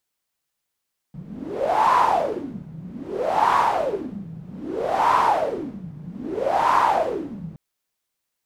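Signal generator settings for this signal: wind-like swept noise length 6.42 s, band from 160 Hz, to 1 kHz, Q 7.7, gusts 4, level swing 20 dB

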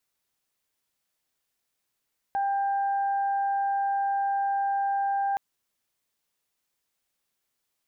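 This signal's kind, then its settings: steady additive tone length 3.02 s, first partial 794 Hz, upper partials -15.5 dB, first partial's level -23.5 dB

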